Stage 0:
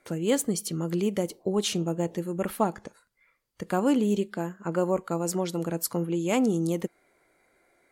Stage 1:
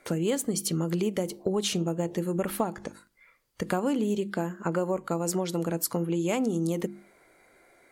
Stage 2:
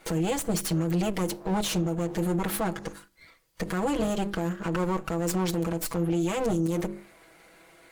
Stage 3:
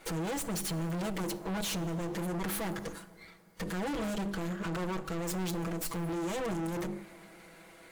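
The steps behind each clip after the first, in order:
mains-hum notches 50/100/150/200/250/300/350 Hz; downward compressor 5 to 1, threshold −31 dBFS, peak gain reduction 12 dB; level +6.5 dB
lower of the sound and its delayed copy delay 6.1 ms; brickwall limiter −25.5 dBFS, peak gain reduction 11.5 dB; level +6.5 dB
gain into a clipping stage and back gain 32.5 dB; dense smooth reverb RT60 3.1 s, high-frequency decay 0.55×, DRR 16 dB

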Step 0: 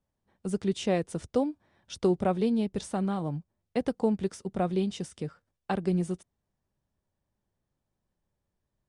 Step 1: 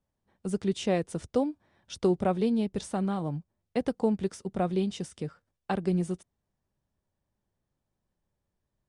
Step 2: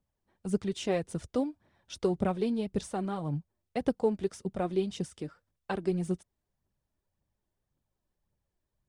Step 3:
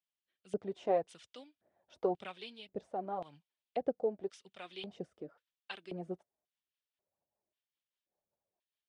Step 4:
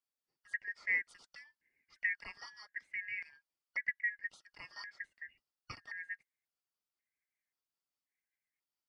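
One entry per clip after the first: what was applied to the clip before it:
no processing that can be heard
phase shifter 1.8 Hz, delay 3.5 ms, feedback 44%; level −3 dB
rotating-speaker cabinet horn 0.8 Hz, later 5 Hz, at 0:05.01; auto-filter band-pass square 0.93 Hz 690–3,100 Hz; level +5.5 dB
band-splitting scrambler in four parts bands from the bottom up 2143; level −3 dB

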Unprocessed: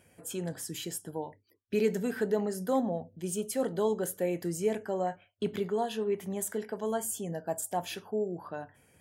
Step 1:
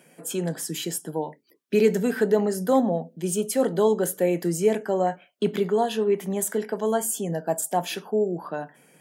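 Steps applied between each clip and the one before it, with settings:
elliptic high-pass filter 150 Hz
level +8.5 dB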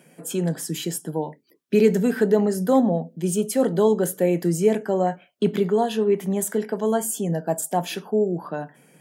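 low-shelf EQ 230 Hz +8 dB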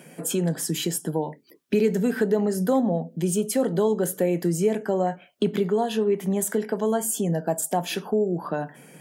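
downward compressor 2 to 1, threshold −33 dBFS, peak gain reduction 12 dB
level +6.5 dB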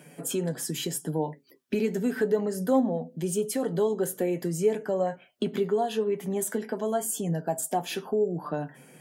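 flanger 0.83 Hz, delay 6.6 ms, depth 1.7 ms, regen +43%

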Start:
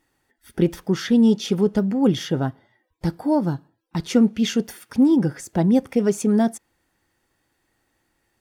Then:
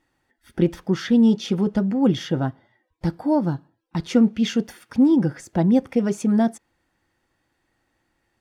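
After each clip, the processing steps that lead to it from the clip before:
high-shelf EQ 7,700 Hz −12 dB
notch filter 420 Hz, Q 12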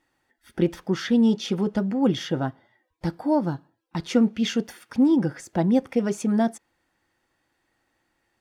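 low-shelf EQ 230 Hz −6.5 dB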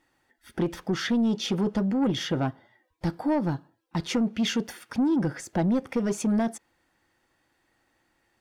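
downward compressor, threshold −19 dBFS, peak gain reduction 5.5 dB
soft clipping −20.5 dBFS, distortion −15 dB
level +2 dB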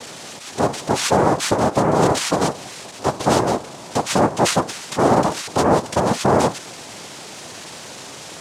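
converter with a step at zero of −36 dBFS
cochlear-implant simulation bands 2
level +7 dB

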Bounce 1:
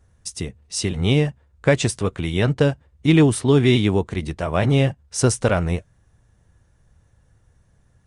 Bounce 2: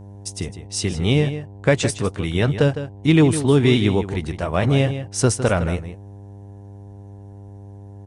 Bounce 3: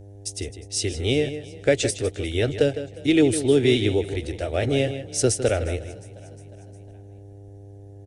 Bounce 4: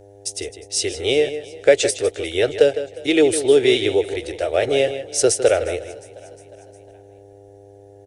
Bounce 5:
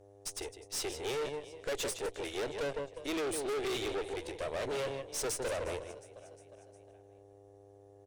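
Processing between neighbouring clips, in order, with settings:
hum with harmonics 100 Hz, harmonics 10, −39 dBFS −8 dB per octave; slap from a distant wall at 27 metres, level −11 dB
phaser with its sweep stopped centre 430 Hz, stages 4; echo with shifted repeats 357 ms, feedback 59%, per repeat +31 Hz, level −22 dB
low shelf with overshoot 310 Hz −12 dB, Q 1.5; level +4.5 dB
tube saturation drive 25 dB, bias 0.8; level −7.5 dB

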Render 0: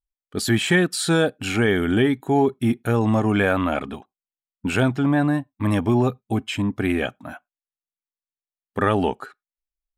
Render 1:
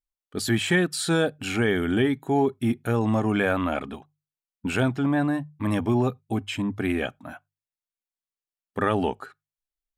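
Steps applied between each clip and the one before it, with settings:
mains-hum notches 50/100/150 Hz
level −3.5 dB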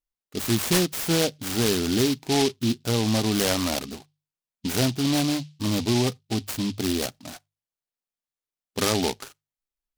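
short delay modulated by noise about 3,800 Hz, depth 0.16 ms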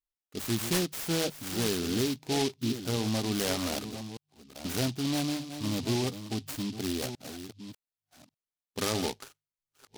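delay that plays each chunk backwards 596 ms, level −10.5 dB
level −7 dB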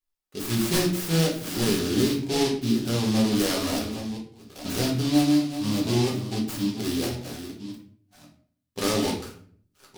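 rectangular room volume 62 cubic metres, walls mixed, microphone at 1 metre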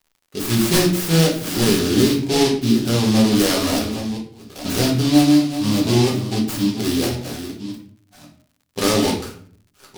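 surface crackle 91 per second −53 dBFS
level +7 dB

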